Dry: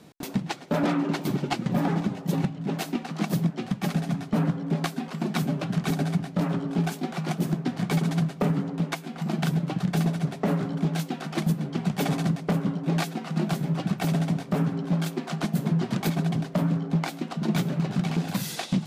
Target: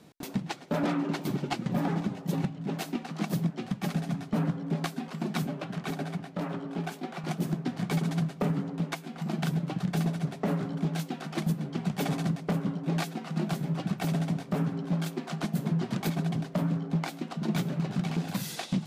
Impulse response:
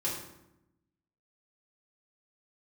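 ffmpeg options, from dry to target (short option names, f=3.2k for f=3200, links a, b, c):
-filter_complex "[0:a]asettb=1/sr,asplit=3[a][b][c];[a]atrim=end=5.474[d];[b]atrim=start=5.47:end=7.24,asetpts=PTS-STARTPTS,afade=t=in:d=0.004:c=qsin,afade=t=out:st=1.766:d=0.004:c=qsin,bass=f=250:g=-7,treble=f=4k:g=-5[e];[c]atrim=start=7.236[f];[d][e]acrossfade=d=0.004:c1=hsin:c2=qsin[g];[g][f]acrossfade=d=0.004:c1=qsin:c2=hsin,volume=-4dB"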